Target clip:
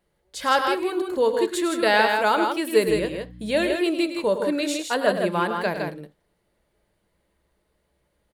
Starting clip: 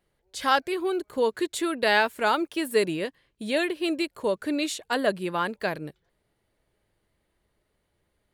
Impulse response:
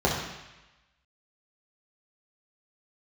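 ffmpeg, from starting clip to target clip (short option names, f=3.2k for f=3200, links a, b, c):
-filter_complex "[0:a]asettb=1/sr,asplit=3[a][b][c];[a]atrim=end=2.884[d];[b]atrim=start=2.88:end=3.57,asetpts=PTS-STARTPTS,afade=t=in:d=0.004:c=qsin,afade=t=out:st=0.686:d=0.004:c=qsin,aeval=exprs='val(0)+0.00708*(sin(2*PI*60*n/s)+sin(2*PI*2*60*n/s)/2+sin(2*PI*3*60*n/s)/3+sin(2*PI*4*60*n/s)/4+sin(2*PI*5*60*n/s)/5)':c=same[e];[c]atrim=start=3.566[f];[d][e]acrossfade=d=0.004:c1=hsin:c2=qsin[g];[g][f]acrossfade=d=0.004:c1=qsin:c2=hsin,aecho=1:1:105|160.3:0.316|0.562,asplit=2[h][i];[1:a]atrim=start_sample=2205,atrim=end_sample=3969,asetrate=48510,aresample=44100[j];[i][j]afir=irnorm=-1:irlink=0,volume=-25dB[k];[h][k]amix=inputs=2:normalize=0,volume=1dB"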